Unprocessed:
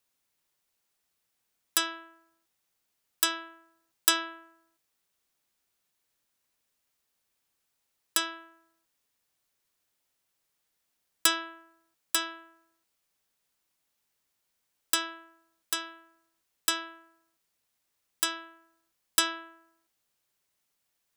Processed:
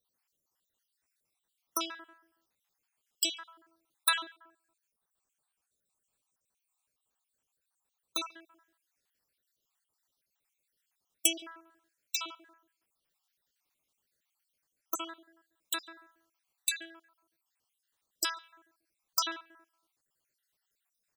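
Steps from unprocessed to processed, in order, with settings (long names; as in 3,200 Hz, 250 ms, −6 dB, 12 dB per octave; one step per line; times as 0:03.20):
time-frequency cells dropped at random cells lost 59%
0:04.24–0:08.18: thirty-one-band graphic EQ 315 Hz −5 dB, 2,000 Hz −10 dB, 3,150 Hz −4 dB, 5,000 Hz −9 dB, 8,000 Hz +6 dB, 12,500 Hz −8 dB
far-end echo of a speakerphone 140 ms, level −25 dB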